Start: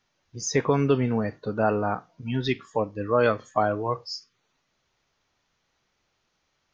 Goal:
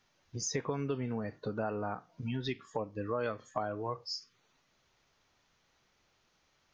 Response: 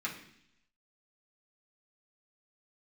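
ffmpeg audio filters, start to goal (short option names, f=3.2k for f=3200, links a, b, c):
-af "acompressor=threshold=-37dB:ratio=3,volume=1dB"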